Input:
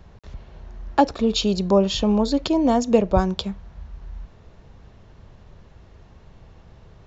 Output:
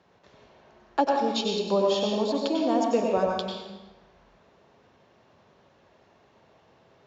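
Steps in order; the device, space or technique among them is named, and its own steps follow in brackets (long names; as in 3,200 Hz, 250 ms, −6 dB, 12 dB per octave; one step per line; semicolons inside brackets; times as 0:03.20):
supermarket ceiling speaker (band-pass filter 280–6,700 Hz; convolution reverb RT60 1.1 s, pre-delay 88 ms, DRR −0.5 dB)
level −6.5 dB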